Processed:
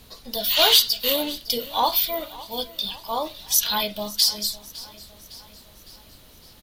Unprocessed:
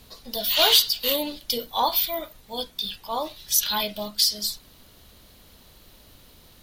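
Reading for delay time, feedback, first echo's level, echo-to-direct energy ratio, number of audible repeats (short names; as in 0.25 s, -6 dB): 0.558 s, 55%, -19.0 dB, -17.5 dB, 4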